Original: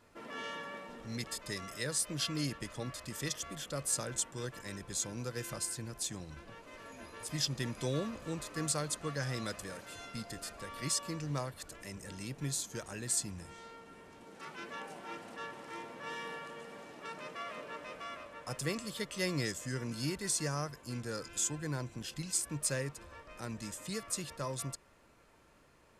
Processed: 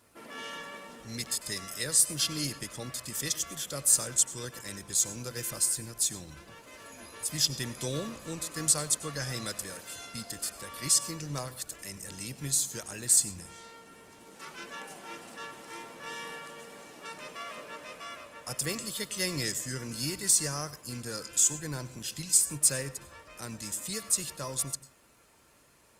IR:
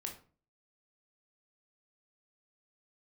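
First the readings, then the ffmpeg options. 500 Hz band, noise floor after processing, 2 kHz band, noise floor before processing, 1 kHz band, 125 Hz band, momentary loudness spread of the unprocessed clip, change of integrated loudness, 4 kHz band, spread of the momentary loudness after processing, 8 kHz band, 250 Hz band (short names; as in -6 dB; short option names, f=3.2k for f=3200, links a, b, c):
0.0 dB, -57 dBFS, +2.5 dB, -64 dBFS, +1.0 dB, 0.0 dB, 13 LU, +8.5 dB, +6.5 dB, 20 LU, +10.5 dB, 0.0 dB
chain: -filter_complex "[0:a]highpass=44,crystalizer=i=2.5:c=0,asplit=2[a][b];[1:a]atrim=start_sample=2205,asetrate=66150,aresample=44100,adelay=95[c];[b][c]afir=irnorm=-1:irlink=0,volume=-11.5dB[d];[a][d]amix=inputs=2:normalize=0" -ar 48000 -c:a libopus -b:a 32k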